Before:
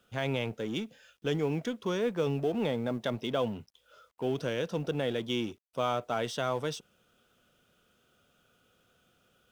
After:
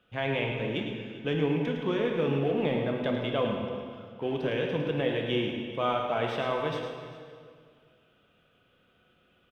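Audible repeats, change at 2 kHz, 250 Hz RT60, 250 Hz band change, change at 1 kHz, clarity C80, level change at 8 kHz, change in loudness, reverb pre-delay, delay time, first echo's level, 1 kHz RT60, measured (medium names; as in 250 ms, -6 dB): 2, +4.5 dB, 2.3 s, +3.0 dB, +3.0 dB, 3.0 dB, under -10 dB, +3.0 dB, 5 ms, 108 ms, -8.0 dB, 2.0 s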